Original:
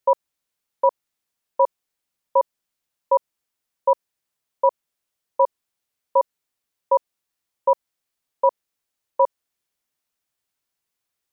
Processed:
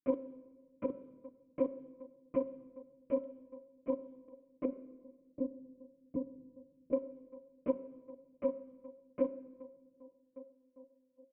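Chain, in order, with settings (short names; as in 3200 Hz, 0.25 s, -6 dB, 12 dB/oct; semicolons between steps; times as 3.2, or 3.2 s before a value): low shelf 440 Hz +11 dB; low-pass opened by the level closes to 530 Hz, open at -16 dBFS; narrowing echo 1.167 s, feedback 58%, band-pass 430 Hz, level -17 dB; monotone LPC vocoder at 8 kHz 260 Hz; 4.65–6.93 EQ curve 240 Hz 0 dB, 920 Hz -13 dB, 1400 Hz -24 dB; pump 140 bpm, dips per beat 1, -16 dB, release 83 ms; vowel filter i; comb 5.9 ms, depth 32%; de-hum 189.2 Hz, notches 9; reverb RT60 1.3 s, pre-delay 7 ms, DRR 13 dB; gain +5.5 dB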